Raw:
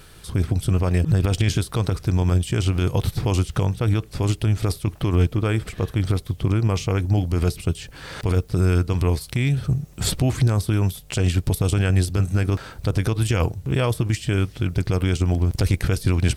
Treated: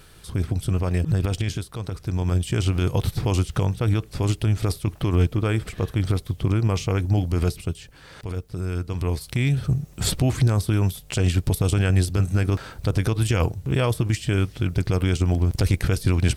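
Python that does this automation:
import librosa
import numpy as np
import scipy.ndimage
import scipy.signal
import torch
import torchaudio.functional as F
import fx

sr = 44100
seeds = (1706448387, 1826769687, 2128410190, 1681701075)

y = fx.gain(x, sr, db=fx.line((1.25, -3.0), (1.76, -9.5), (2.49, -1.0), (7.43, -1.0), (8.04, -9.5), (8.65, -9.5), (9.4, -0.5)))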